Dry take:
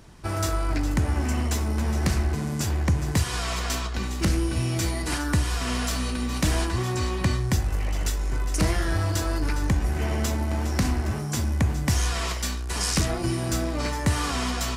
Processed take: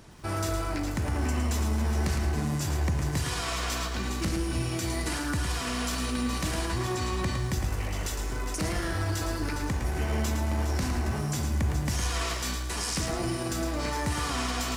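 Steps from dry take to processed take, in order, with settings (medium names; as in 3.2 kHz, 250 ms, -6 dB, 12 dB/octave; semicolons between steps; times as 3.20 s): bass shelf 75 Hz -6 dB; peak limiter -21.5 dBFS, peak gain reduction 8 dB; bit-crushed delay 110 ms, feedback 35%, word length 9-bit, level -6.5 dB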